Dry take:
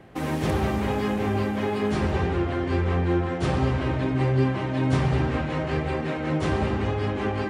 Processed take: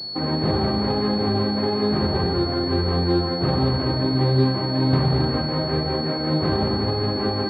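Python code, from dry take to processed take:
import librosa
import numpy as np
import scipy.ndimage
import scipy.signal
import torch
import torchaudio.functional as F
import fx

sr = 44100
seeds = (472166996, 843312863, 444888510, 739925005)

y = scipy.signal.sosfilt(scipy.signal.butter(2, 97.0, 'highpass', fs=sr, output='sos'), x)
y = fx.air_absorb(y, sr, metres=450.0)
y = fx.pwm(y, sr, carrier_hz=4400.0)
y = y * 10.0 ** (4.5 / 20.0)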